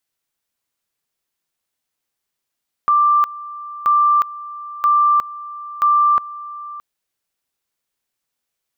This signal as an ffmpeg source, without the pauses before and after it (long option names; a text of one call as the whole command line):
ffmpeg -f lavfi -i "aevalsrc='pow(10,(-10.5-18*gte(mod(t,0.98),0.36))/20)*sin(2*PI*1180*t)':duration=3.92:sample_rate=44100" out.wav